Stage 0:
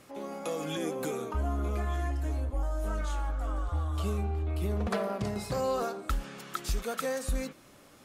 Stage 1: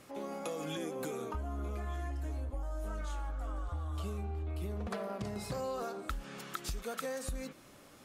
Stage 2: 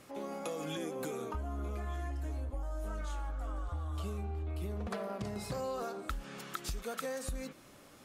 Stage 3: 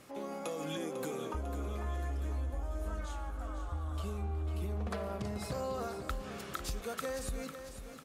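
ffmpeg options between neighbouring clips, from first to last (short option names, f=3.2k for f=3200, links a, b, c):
-af "acompressor=threshold=-34dB:ratio=6,volume=-1dB"
-af anull
-af "aecho=1:1:498|996|1494|1992|2490|2988:0.316|0.164|0.0855|0.0445|0.0231|0.012"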